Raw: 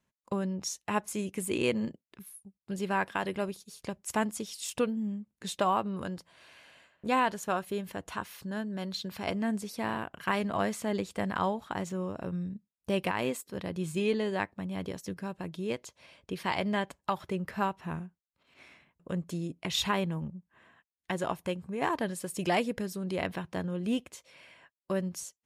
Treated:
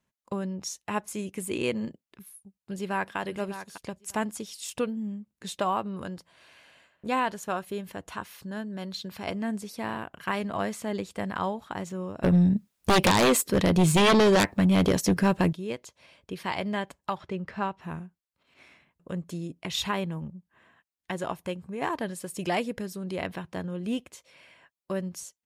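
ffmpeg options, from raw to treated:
-filter_complex "[0:a]asplit=2[a][b];[b]afade=t=in:st=2.32:d=0.01,afade=t=out:st=3.17:d=0.01,aecho=0:1:600|1200:0.281838|0.0422757[c];[a][c]amix=inputs=2:normalize=0,asettb=1/sr,asplit=3[d][e][f];[d]atrim=end=12.234[g];[e]atrim=start=12.23:end=15.53,asetpts=PTS-STARTPTS,afade=t=in:d=0.004:c=qsin,afade=t=out:st=3.296:d=0.004:c=qsin,aeval=exprs='0.168*sin(PI/2*4.47*val(0)/0.168)':c=same[h];[f]atrim=start=15.526[i];[g][h]acrossfade=d=0.004:c1=hsin:c2=qsin[j];[j][i]acrossfade=d=0.004:c1=qsin:c2=hsin,asettb=1/sr,asplit=3[k][l][m];[k]atrim=end=17.154[n];[l]atrim=start=17.15:end=17.81,asetpts=PTS-STARTPTS,afade=t=in:d=0.004:c=qsin,afade=t=out:st=0.656:d=0.004:c=qsin,lowpass=5.3k[o];[m]atrim=start=17.806[p];[n][o]acrossfade=d=0.004:c1=hsin:c2=qsin[q];[q][p]acrossfade=d=0.004:c1=qsin:c2=hsin"

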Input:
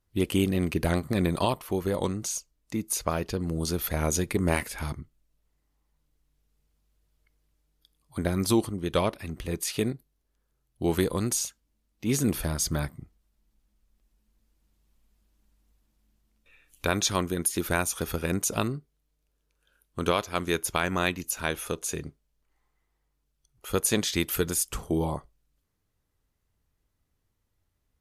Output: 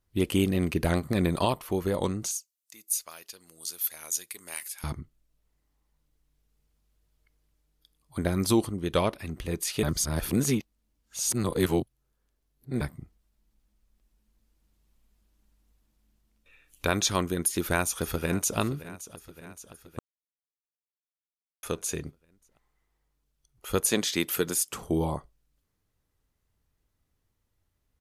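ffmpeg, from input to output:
-filter_complex "[0:a]asettb=1/sr,asplit=3[a][b][c];[a]atrim=end=2.314[d];[b]atrim=start=2.31:end=4.84,asetpts=PTS-STARTPTS,afade=t=in:d=0.004:c=qsin,afade=t=out:st=2.526:d=0.004:c=qsin,aderivative[e];[c]atrim=start=4.836[f];[d][e]acrossfade=d=0.004:c1=hsin:c2=qsin[g];[g][f]acrossfade=d=0.004:c1=qsin:c2=hsin,asplit=2[h][i];[i]afade=t=in:st=17.46:d=0.01,afade=t=out:st=18.58:d=0.01,aecho=0:1:570|1140|1710|2280|2850|3420|3990:0.158489|0.103018|0.0669617|0.0435251|0.0282913|0.0183894|0.0119531[j];[h][j]amix=inputs=2:normalize=0,asettb=1/sr,asplit=3[k][l][m];[k]atrim=end=23.914[n];[l]atrim=start=23.91:end=24.81,asetpts=PTS-STARTPTS,afade=t=in:d=0.004:c=qsin,afade=t=out:st=0.896:d=0.004:c=qsin,highpass=170[o];[m]atrim=start=24.806[p];[n][o]acrossfade=d=0.004:c1=hsin:c2=qsin[q];[q][p]acrossfade=d=0.004:c1=qsin:c2=hsin,asplit=5[r][s][t][u][v];[r]atrim=end=9.832[w];[s]atrim=start=9.828:end=12.812,asetpts=PTS-STARTPTS,areverse[x];[t]atrim=start=12.808:end=19.99,asetpts=PTS-STARTPTS,afade=t=out:st=7.178:d=0.004:c=hsin[y];[u]atrim=start=19.99:end=21.63,asetpts=PTS-STARTPTS,volume=0[z];[v]atrim=start=21.63,asetpts=PTS-STARTPTS,afade=t=in:d=0.004:c=hsin[aa];[w][x]acrossfade=d=0.004:c1=hsin:c2=hsin[ab];[y][z][aa]concat=n=3:v=0:a=1[ac];[ab][ac]acrossfade=d=0.004:c1=hsin:c2=hsin"

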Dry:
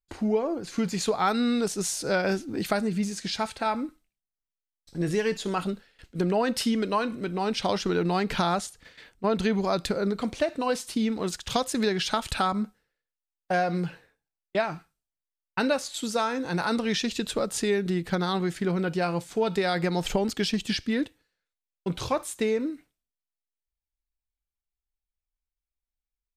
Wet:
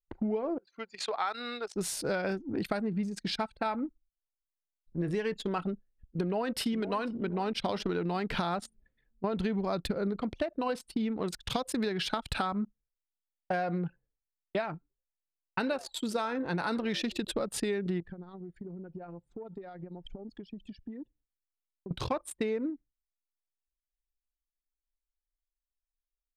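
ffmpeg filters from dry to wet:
-filter_complex "[0:a]asettb=1/sr,asplit=3[a][b][c];[a]atrim=end=0.584[d];[b]atrim=start=0.58:end=1.76,asetpts=PTS-STARTPTS,afade=t=in:d=0.004:c=qsin,afade=t=out:st=1.176:d=0.004:c=qsin,highpass=710,lowpass=6.8k[e];[c]atrim=start=1.756[f];[d][e]acrossfade=d=0.004:c1=hsin:c2=qsin[g];[g][f]acrossfade=d=0.004:c1=qsin:c2=hsin,asplit=2[h][i];[i]afade=t=in:st=6.23:d=0.01,afade=t=out:st=6.91:d=0.01,aecho=0:1:490|980|1470|1960|2450:0.16788|0.0839402|0.0419701|0.0209851|0.0104925[j];[h][j]amix=inputs=2:normalize=0,asettb=1/sr,asplit=3[k][l][m];[k]atrim=end=9.334[n];[l]atrim=start=9.33:end=10.21,asetpts=PTS-STARTPTS,afade=t=in:d=0.004:c=qsin,afade=t=out:st=0.876:d=0.004:c=qsin,lowshelf=f=330:g=4.5[o];[m]atrim=start=10.206[p];[n][o]acrossfade=d=0.004:c1=hsin:c2=qsin[q];[q][p]acrossfade=d=0.004:c1=qsin:c2=hsin,asettb=1/sr,asplit=3[r][s][t];[r]atrim=end=14.734[u];[s]atrim=start=14.73:end=17.32,asetpts=PTS-STARTPTS,afade=t=in:d=0.004:c=qsin,afade=t=out:st=2.586:d=0.004:c=qsin,asplit=4[v][w][x][y];[w]adelay=84,afreqshift=120,volume=-20.5dB[z];[x]adelay=168,afreqshift=240,volume=-28.9dB[aa];[y]adelay=252,afreqshift=360,volume=-37.3dB[ab];[v][z][aa][ab]amix=inputs=4:normalize=0,atrim=end_sample=114219[ac];[t]atrim=start=17.316[ad];[u][ac]acrossfade=d=0.004:c1=hsin:c2=qsin[ae];[ae][ad]acrossfade=d=0.004:c1=qsin:c2=hsin,asettb=1/sr,asplit=3[af][ag][ah];[af]atrim=end=18.004[ai];[ag]atrim=start=18:end=21.91,asetpts=PTS-STARTPTS,afade=t=in:d=0.004:c=qsin,afade=t=out:st=3.906:d=0.004:c=qsin,acompressor=threshold=-36dB:ratio=12:attack=3.2:release=140:knee=1:detection=peak[aj];[ah]atrim=start=21.906[ak];[ai][aj]acrossfade=d=0.004:c1=hsin:c2=qsin[al];[al][ak]acrossfade=d=0.004:c1=qsin:c2=hsin,anlmdn=6.31,equalizer=f=6.5k:w=1.9:g=-8.5,acompressor=threshold=-28dB:ratio=6"

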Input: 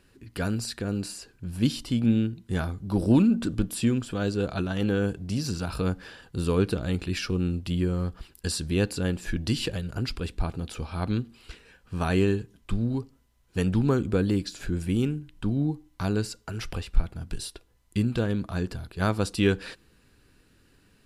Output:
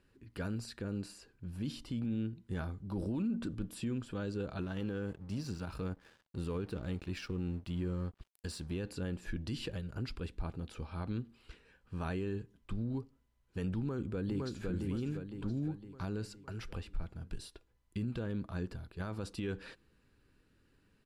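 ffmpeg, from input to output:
-filter_complex "[0:a]asettb=1/sr,asplit=3[a][b][c];[a]atrim=end=4.614[d];[b]atrim=start=4.61:end=8.79,asetpts=PTS-STARTPTS,afade=t=in:d=0.004:c=qsin,afade=t=out:st=4.176:d=0.004:c=qsin,aeval=exprs='sgn(val(0))*max(abs(val(0))-0.00501,0)':c=same[e];[c]atrim=start=8.786[f];[d][e]acrossfade=d=0.004:c1=hsin:c2=qsin[g];[g][f]acrossfade=d=0.004:c1=qsin:c2=hsin,asplit=2[h][i];[i]afade=t=in:st=13.78:d=0.01,afade=t=out:st=14.66:d=0.01,aecho=0:1:510|1020|1530|2040|2550|3060:0.473151|0.236576|0.118288|0.0591439|0.029572|0.014786[j];[h][j]amix=inputs=2:normalize=0,highshelf=f=3.9k:g=-8.5,bandreject=f=710:w=14,alimiter=limit=-20dB:level=0:latency=1:release=25,volume=-8.5dB"

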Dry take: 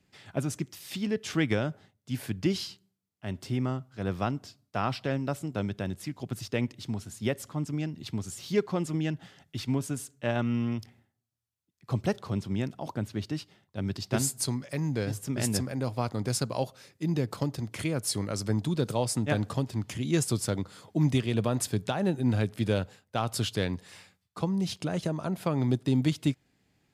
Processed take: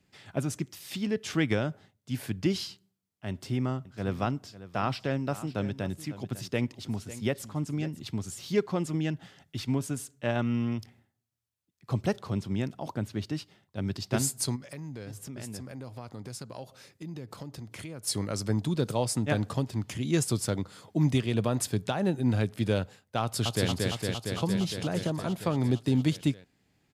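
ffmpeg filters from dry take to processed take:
-filter_complex "[0:a]asettb=1/sr,asplit=3[a][b][c];[a]atrim=end=3.304[d];[b]atrim=start=3.3:end=8.03,asetpts=PTS-STARTPTS,afade=t=in:d=0.004:c=qsin,afade=t=out:st=4.726:d=0.004:c=qsin,aecho=1:1:550:0.178,atrim=end_sample=208593[e];[c]atrim=start=8.026[f];[d][e]acrossfade=d=0.004:c1=hsin:c2=qsin[g];[g][f]acrossfade=d=0.004:c1=qsin:c2=hsin,asplit=3[h][i][j];[h]afade=t=out:st=14.55:d=0.02[k];[i]acompressor=threshold=-40dB:ratio=3:attack=3.2:release=140:knee=1:detection=peak,afade=t=in:st=14.55:d=0.02,afade=t=out:st=18.06:d=0.02[l];[j]afade=t=in:st=18.06:d=0.02[m];[k][l][m]amix=inputs=3:normalize=0,asplit=2[n][o];[o]afade=t=in:st=23.22:d=0.01,afade=t=out:st=23.68:d=0.01,aecho=0:1:230|460|690|920|1150|1380|1610|1840|2070|2300|2530|2760:0.794328|0.635463|0.50837|0.406696|0.325357|0.260285|0.208228|0.166583|0.133266|0.106613|0.0852903|0.0682323[p];[n][p]amix=inputs=2:normalize=0"

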